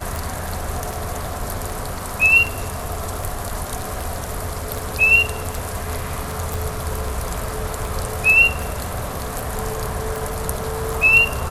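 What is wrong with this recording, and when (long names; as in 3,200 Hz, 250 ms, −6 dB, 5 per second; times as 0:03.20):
scratch tick 78 rpm
0:06.54: click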